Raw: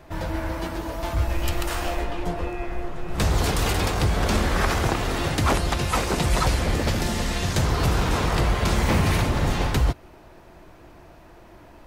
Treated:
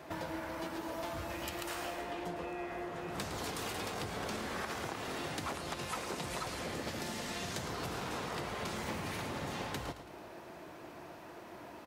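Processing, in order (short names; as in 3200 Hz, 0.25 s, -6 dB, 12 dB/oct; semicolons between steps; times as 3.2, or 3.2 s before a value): Bessel high-pass 200 Hz, order 2; compressor 6:1, threshold -38 dBFS, peak gain reduction 18.5 dB; on a send: feedback echo 0.11 s, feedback 46%, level -11 dB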